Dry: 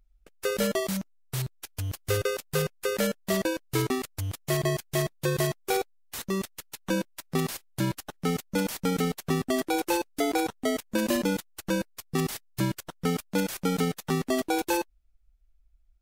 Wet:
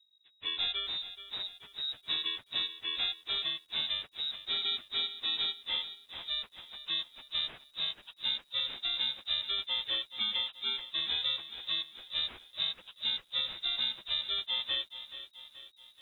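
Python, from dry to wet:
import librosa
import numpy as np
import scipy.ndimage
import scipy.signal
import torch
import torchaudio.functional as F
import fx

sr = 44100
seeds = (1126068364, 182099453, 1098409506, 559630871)

y = fx.pitch_bins(x, sr, semitones=-5.0)
y = fx.freq_invert(y, sr, carrier_hz=3800)
y = fx.echo_crushed(y, sr, ms=429, feedback_pct=55, bits=9, wet_db=-12.5)
y = y * 10.0 ** (-6.0 / 20.0)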